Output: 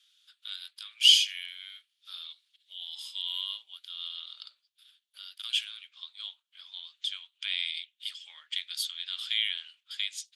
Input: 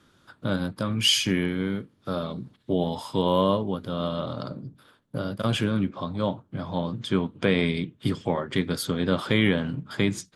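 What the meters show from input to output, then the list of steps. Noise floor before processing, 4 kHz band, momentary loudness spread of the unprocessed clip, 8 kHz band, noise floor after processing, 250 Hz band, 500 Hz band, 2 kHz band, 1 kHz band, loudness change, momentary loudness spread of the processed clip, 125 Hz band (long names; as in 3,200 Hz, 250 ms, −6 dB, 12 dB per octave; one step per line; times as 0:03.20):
−64 dBFS, +3.0 dB, 11 LU, −2.0 dB, −80 dBFS, below −40 dB, below −40 dB, −6.5 dB, −28.5 dB, −2.5 dB, 20 LU, below −40 dB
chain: four-pole ladder high-pass 2,700 Hz, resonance 50%
level +6 dB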